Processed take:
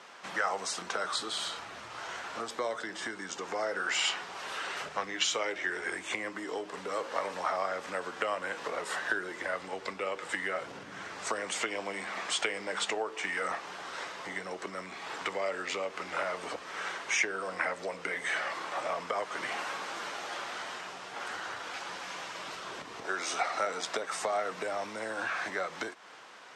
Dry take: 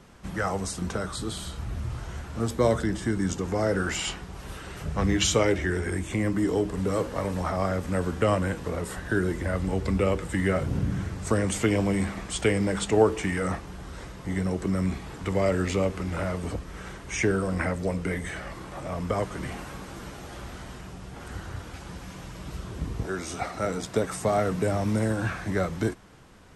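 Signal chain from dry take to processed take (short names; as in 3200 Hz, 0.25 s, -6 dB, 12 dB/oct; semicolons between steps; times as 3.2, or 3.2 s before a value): compressor 6:1, threshold -31 dBFS, peak gain reduction 16 dB; BPF 720–5800 Hz; gain +7.5 dB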